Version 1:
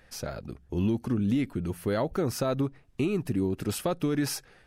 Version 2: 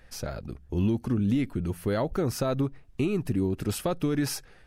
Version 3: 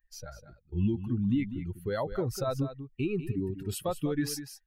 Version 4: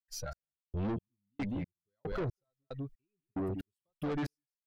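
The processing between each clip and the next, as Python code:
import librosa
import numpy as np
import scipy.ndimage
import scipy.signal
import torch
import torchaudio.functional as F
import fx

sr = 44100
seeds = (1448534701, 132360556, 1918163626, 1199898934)

y1 = fx.low_shelf(x, sr, hz=65.0, db=10.0)
y2 = fx.bin_expand(y1, sr, power=2.0)
y2 = y2 + 10.0 ** (-11.5 / 20.0) * np.pad(y2, (int(198 * sr / 1000.0), 0))[:len(y2)]
y3 = fx.step_gate(y2, sr, bpm=183, pattern='.xxx....', floor_db=-60.0, edge_ms=4.5)
y3 = 10.0 ** (-36.0 / 20.0) * np.tanh(y3 / 10.0 ** (-36.0 / 20.0))
y3 = y3 * librosa.db_to_amplitude(4.5)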